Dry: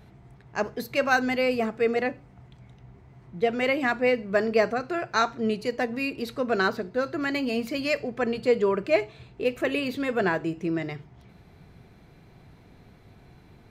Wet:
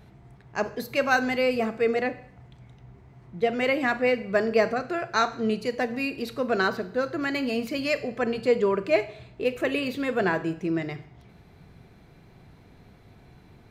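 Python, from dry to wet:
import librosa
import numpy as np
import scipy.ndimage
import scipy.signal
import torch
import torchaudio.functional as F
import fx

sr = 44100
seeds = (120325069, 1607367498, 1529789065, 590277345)

y = fx.rev_schroeder(x, sr, rt60_s=0.67, comb_ms=33, drr_db=14.5)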